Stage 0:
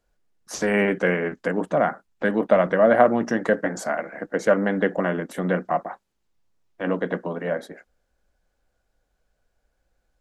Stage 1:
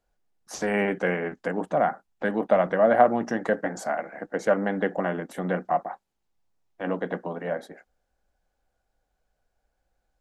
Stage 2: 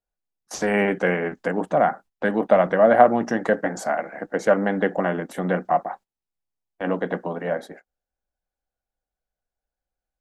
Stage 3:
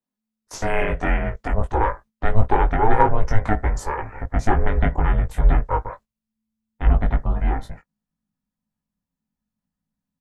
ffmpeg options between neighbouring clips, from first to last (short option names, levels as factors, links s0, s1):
-af "equalizer=f=780:t=o:w=0.38:g=6.5,volume=0.596"
-af "agate=range=0.141:threshold=0.00501:ratio=16:detection=peak,volume=1.58"
-filter_complex "[0:a]aeval=exprs='val(0)*sin(2*PI*220*n/s)':c=same,asplit=2[s0][s1];[s1]adelay=19,volume=0.631[s2];[s0][s2]amix=inputs=2:normalize=0,asubboost=boost=10.5:cutoff=110"